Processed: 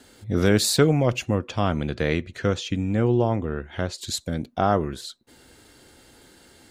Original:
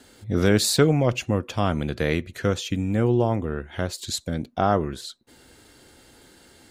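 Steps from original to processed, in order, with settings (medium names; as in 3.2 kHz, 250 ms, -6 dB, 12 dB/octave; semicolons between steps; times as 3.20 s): 1.35–4.01 s: low-pass 6.9 kHz 12 dB/octave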